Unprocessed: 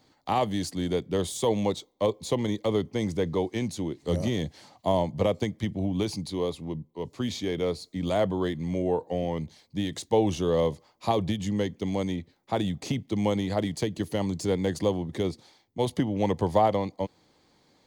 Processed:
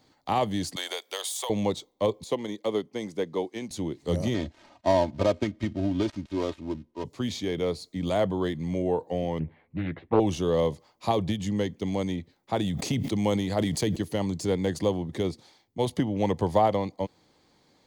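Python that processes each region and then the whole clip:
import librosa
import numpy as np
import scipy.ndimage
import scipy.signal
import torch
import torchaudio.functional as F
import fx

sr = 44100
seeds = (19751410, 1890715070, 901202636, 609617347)

y = fx.chain(x, sr, fx.highpass(hz=660.0, slope=24),
    fx.high_shelf(hz=11000.0, db=10.0),
    fx.band_squash(depth_pct=100), at=(0.76, 1.5))
y = fx.chain(y, sr, fx.highpass(hz=220.0, slope=12),
    fx.upward_expand(threshold_db=-36.0, expansion=1.5), at=(2.24, 3.71))
y = fx.chain(y, sr, fx.dead_time(dead_ms=0.13),
    fx.lowpass(hz=5200.0, slope=12),
    fx.comb(ms=3.2, depth=0.64), at=(4.34, 7.04))
y = fx.chain(y, sr, fx.steep_lowpass(hz=2400.0, slope=36),
    fx.doubler(ms=12.0, db=-3.5),
    fx.doppler_dist(depth_ms=0.38), at=(9.39, 10.2))
y = fx.chain(y, sr, fx.high_shelf(hz=7000.0, db=5.0),
    fx.sustainer(db_per_s=37.0), at=(12.62, 13.96))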